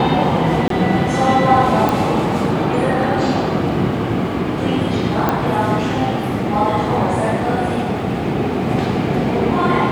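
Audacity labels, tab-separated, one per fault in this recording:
0.680000	0.700000	drop-out 23 ms
1.890000	1.890000	click
5.290000	5.290000	click −4 dBFS

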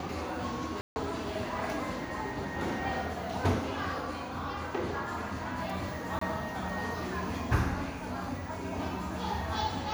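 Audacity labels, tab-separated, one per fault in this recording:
0.810000	0.960000	drop-out 150 ms
6.190000	6.210000	drop-out 24 ms

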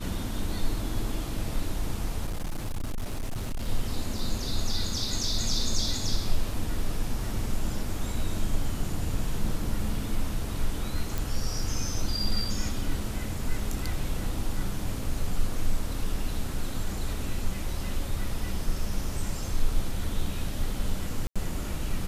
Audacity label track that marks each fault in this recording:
2.260000	3.690000	clipping −27 dBFS
11.180000	11.180000	click
21.270000	21.360000	drop-out 86 ms

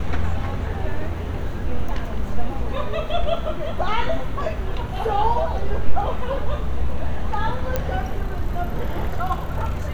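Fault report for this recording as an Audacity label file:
7.760000	7.760000	click −8 dBFS

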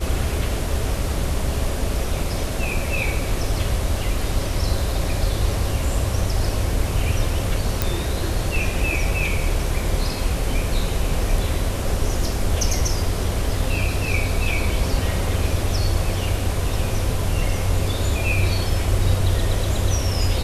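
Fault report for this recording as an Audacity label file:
7.820000	7.820000	click

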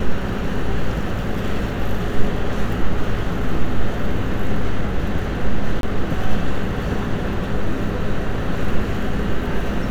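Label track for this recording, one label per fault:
5.810000	5.830000	drop-out 22 ms

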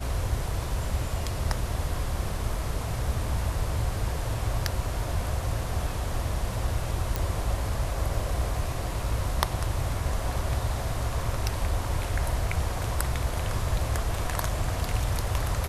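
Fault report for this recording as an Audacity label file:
7.160000	7.160000	click

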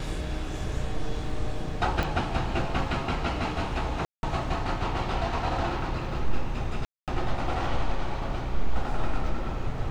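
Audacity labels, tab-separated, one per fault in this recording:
2.030000	2.030000	click
4.050000	4.230000	drop-out 181 ms
6.850000	7.080000	drop-out 227 ms

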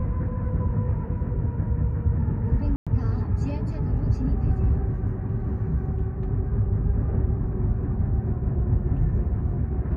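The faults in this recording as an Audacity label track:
2.760000	2.870000	drop-out 106 ms

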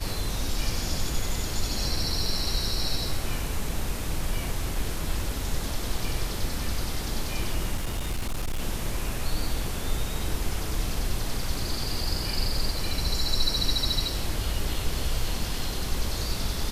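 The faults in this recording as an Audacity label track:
7.760000	8.590000	clipping −24.5 dBFS

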